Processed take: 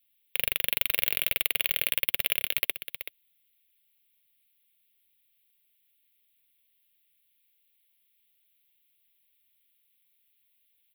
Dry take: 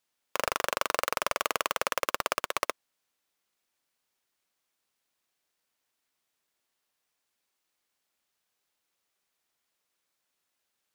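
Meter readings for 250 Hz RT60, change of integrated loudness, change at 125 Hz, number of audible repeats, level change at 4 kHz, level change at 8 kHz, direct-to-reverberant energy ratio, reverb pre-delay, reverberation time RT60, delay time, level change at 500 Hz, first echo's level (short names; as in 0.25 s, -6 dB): none, +4.0 dB, +3.5 dB, 1, +5.5 dB, +1.0 dB, none, none, none, 0.379 s, -10.0 dB, -10.0 dB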